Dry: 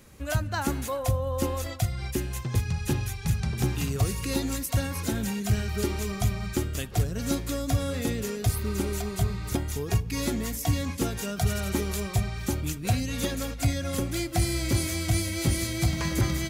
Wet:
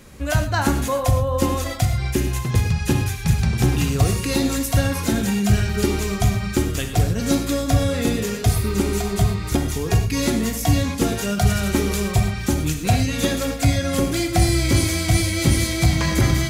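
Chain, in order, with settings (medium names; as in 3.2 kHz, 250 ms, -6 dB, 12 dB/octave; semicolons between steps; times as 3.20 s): treble shelf 11 kHz -6 dB; gated-style reverb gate 140 ms flat, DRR 5.5 dB; trim +7.5 dB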